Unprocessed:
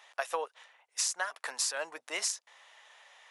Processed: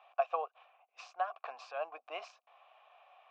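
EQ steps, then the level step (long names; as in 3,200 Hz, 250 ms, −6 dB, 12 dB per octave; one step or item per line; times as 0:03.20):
formant filter a
high-frequency loss of the air 190 metres
high-shelf EQ 8,400 Hz −5.5 dB
+9.5 dB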